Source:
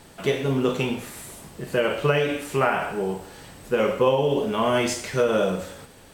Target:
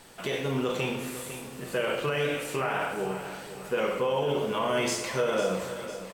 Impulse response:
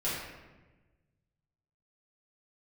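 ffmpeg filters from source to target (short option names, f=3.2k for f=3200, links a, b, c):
-filter_complex "[0:a]lowshelf=f=370:g=-8,alimiter=limit=-18.5dB:level=0:latency=1:release=34,aecho=1:1:502|1004|1506|2008|2510:0.251|0.131|0.0679|0.0353|0.0184,asplit=2[a][b];[1:a]atrim=start_sample=2205[c];[b][c]afir=irnorm=-1:irlink=0,volume=-13dB[d];[a][d]amix=inputs=2:normalize=0,volume=-2.5dB"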